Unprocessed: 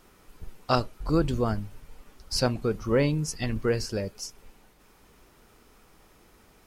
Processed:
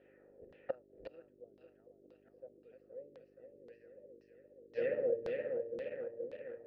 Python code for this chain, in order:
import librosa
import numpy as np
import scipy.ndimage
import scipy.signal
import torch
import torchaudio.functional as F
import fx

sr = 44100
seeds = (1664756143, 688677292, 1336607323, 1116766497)

p1 = fx.reverse_delay_fb(x, sr, ms=236, feedback_pct=83, wet_db=-6)
p2 = fx.env_lowpass(p1, sr, base_hz=1600.0, full_db=-21.5)
p3 = fx.quant_dither(p2, sr, seeds[0], bits=6, dither='none')
p4 = p2 + (p3 * librosa.db_to_amplitude(-11.0))
p5 = fx.gate_flip(p4, sr, shuts_db=-20.0, range_db=-32)
p6 = fx.dmg_buzz(p5, sr, base_hz=50.0, harmonics=8, level_db=-52.0, tilt_db=-3, odd_only=False)
p7 = fx.vowel_filter(p6, sr, vowel='e')
p8 = fx.filter_lfo_lowpass(p7, sr, shape='saw_down', hz=1.9, low_hz=290.0, high_hz=4200.0, q=1.8)
y = p8 * librosa.db_to_amplitude(4.5)